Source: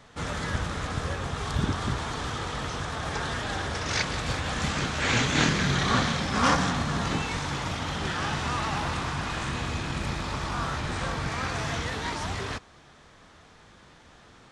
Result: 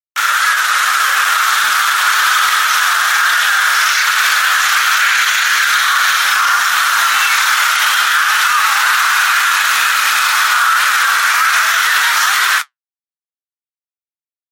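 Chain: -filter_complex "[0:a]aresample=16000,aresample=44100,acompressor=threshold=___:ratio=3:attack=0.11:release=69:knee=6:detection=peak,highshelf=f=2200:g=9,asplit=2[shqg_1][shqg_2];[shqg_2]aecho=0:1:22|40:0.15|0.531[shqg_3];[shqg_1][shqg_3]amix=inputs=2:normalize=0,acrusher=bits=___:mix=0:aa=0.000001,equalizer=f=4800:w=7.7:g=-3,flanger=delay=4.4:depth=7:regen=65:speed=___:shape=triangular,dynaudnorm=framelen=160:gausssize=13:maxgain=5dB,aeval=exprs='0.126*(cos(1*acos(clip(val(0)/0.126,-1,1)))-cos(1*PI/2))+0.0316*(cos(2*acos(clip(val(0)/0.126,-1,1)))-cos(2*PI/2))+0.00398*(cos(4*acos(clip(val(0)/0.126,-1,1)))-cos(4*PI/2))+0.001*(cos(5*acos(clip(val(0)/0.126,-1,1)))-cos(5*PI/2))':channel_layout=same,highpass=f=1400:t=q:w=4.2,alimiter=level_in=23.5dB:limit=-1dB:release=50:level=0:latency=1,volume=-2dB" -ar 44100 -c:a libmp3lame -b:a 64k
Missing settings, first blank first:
-34dB, 5, 1.2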